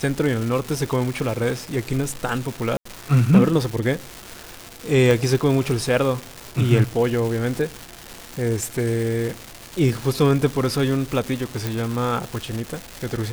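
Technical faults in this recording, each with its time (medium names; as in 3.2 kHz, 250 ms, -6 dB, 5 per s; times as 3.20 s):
crackle 580 per s -26 dBFS
2.77–2.85 s: dropout 84 ms
5.11 s: pop
11.67 s: pop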